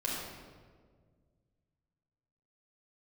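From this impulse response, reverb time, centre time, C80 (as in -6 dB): 1.7 s, 91 ms, 1.5 dB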